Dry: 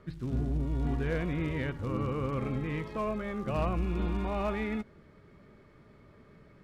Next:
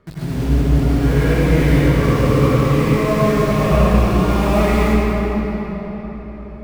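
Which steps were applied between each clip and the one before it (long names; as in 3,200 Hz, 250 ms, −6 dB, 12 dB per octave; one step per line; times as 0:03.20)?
in parallel at −7 dB: log-companded quantiser 2 bits
on the sum: convolution reverb RT60 4.7 s, pre-delay 79 ms, DRR −10.5 dB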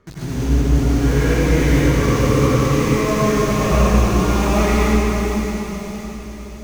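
thirty-one-band graphic EQ 160 Hz −6 dB, 630 Hz −4 dB, 6,300 Hz +10 dB
delay with a high-pass on its return 567 ms, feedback 51%, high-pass 3,600 Hz, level −4 dB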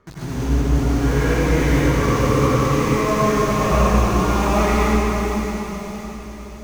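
parametric band 1,000 Hz +5 dB 1.4 octaves
level −2.5 dB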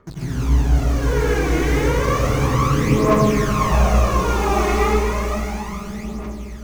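phase shifter 0.32 Hz, delay 2.8 ms, feedback 56%
level −2 dB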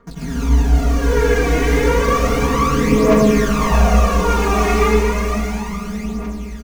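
comb filter 4.3 ms, depth 98%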